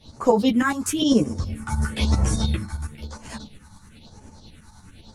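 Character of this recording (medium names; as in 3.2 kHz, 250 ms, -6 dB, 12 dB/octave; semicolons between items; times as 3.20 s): phasing stages 4, 1 Hz, lowest notch 450–3700 Hz; tremolo saw up 9.8 Hz, depth 65%; a shimmering, thickened sound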